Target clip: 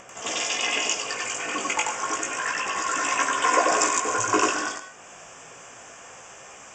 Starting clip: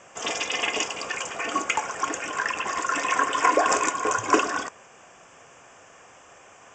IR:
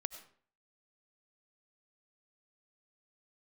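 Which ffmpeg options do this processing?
-filter_complex "[0:a]flanger=delay=15:depth=5.2:speed=0.31,acompressor=mode=upward:threshold=-41dB:ratio=2.5,asplit=2[link_01][link_02];[1:a]atrim=start_sample=2205,highshelf=frequency=3900:gain=12,adelay=92[link_03];[link_02][link_03]afir=irnorm=-1:irlink=0,volume=-0.5dB[link_04];[link_01][link_04]amix=inputs=2:normalize=0"

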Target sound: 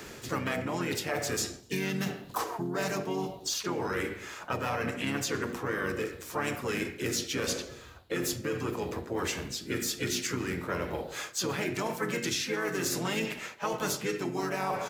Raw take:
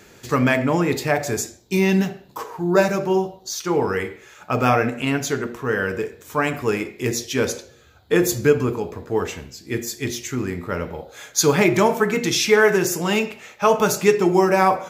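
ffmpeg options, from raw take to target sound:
ffmpeg -i in.wav -filter_complex "[0:a]bandreject=frequency=50:width_type=h:width=6,bandreject=frequency=100:width_type=h:width=6,bandreject=frequency=150:width_type=h:width=6,bandreject=frequency=200:width_type=h:width=6,bandreject=frequency=250:width_type=h:width=6,areverse,acompressor=threshold=-25dB:ratio=12,areverse,asplit=3[link_01][link_02][link_03];[link_02]asetrate=33038,aresample=44100,atempo=1.33484,volume=-5dB[link_04];[link_03]asetrate=52444,aresample=44100,atempo=0.840896,volume=-10dB[link_05];[link_01][link_04][link_05]amix=inputs=3:normalize=0,acrossover=split=150|1300|3900[link_06][link_07][link_08][link_09];[link_06]acompressor=threshold=-46dB:ratio=4[link_10];[link_07]acompressor=threshold=-35dB:ratio=4[link_11];[link_08]acompressor=threshold=-39dB:ratio=4[link_12];[link_09]acompressor=threshold=-36dB:ratio=4[link_13];[link_10][link_11][link_12][link_13]amix=inputs=4:normalize=0,asplit=2[link_14][link_15];[link_15]adelay=250.7,volume=-29dB,highshelf=frequency=4000:gain=-5.64[link_16];[link_14][link_16]amix=inputs=2:normalize=0,volume=2.5dB" out.wav

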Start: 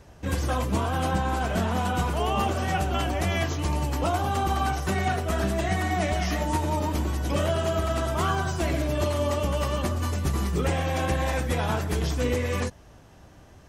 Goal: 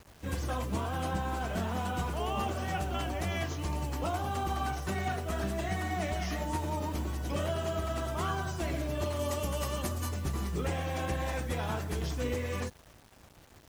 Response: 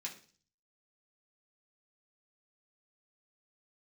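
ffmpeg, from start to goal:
-filter_complex "[0:a]asettb=1/sr,asplit=3[link_01][link_02][link_03];[link_01]atrim=end=9.194[link_04];[link_02]atrim=start=9.19:end=10.09,asetpts=PTS-STARTPTS,afade=type=in:duration=0.004:curve=qsin,afade=type=out:start_time=0.896:duration=0.004:curve=qsin,highshelf=frequency=6100:gain=11.5[link_05];[link_03]atrim=start=10.086[link_06];[link_04][link_05]acrossfade=duration=0.004:curve1=hsin:curve2=qsin[link_07];[link_07][link_06]acrossfade=duration=0.004:curve1=qsin:curve2=hsin,acrusher=bits=7:mix=0:aa=0.000001,volume=-7.5dB"

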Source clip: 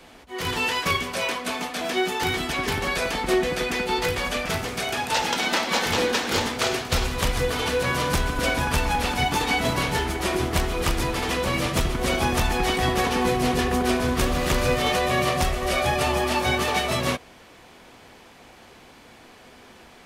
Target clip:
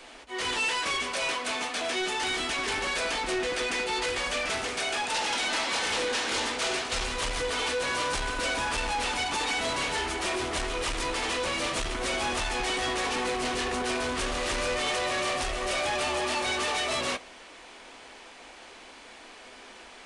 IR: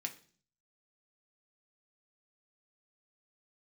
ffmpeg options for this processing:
-filter_complex "[0:a]equalizer=frequency=120:width_type=o:width=2:gain=-14.5,asoftclip=type=tanh:threshold=-28.5dB,asplit=2[link_01][link_02];[1:a]atrim=start_sample=2205,asetrate=48510,aresample=44100[link_03];[link_02][link_03]afir=irnorm=-1:irlink=0,volume=-5dB[link_04];[link_01][link_04]amix=inputs=2:normalize=0,aresample=22050,aresample=44100"

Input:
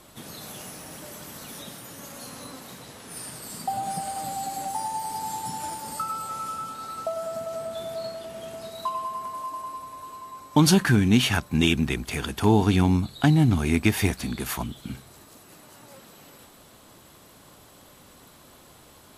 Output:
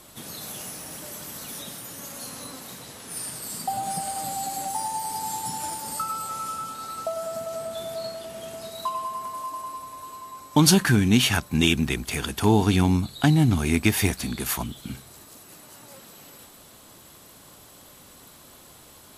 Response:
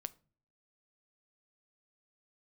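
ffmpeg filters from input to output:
-af "highshelf=frequency=4100:gain=6"

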